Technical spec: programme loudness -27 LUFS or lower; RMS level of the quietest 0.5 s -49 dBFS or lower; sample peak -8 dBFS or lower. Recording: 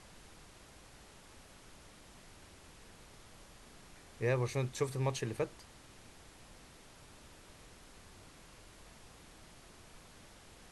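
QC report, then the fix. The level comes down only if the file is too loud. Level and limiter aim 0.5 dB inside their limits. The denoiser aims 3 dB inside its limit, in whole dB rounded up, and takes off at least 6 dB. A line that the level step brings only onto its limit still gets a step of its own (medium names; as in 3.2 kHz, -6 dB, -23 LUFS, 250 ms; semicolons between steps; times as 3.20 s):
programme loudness -36.0 LUFS: pass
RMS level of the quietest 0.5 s -57 dBFS: pass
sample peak -19.0 dBFS: pass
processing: none needed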